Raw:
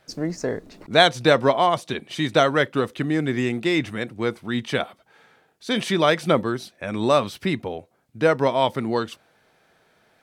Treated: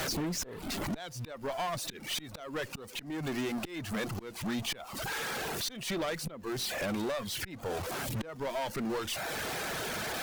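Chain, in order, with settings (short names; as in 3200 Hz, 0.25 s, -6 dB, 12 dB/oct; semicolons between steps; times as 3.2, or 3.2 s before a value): zero-crossing step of -25.5 dBFS; reverb removal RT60 0.71 s; compressor 8:1, threshold -25 dBFS, peak gain reduction 15.5 dB; auto swell 0.285 s; tube stage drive 29 dB, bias 0.5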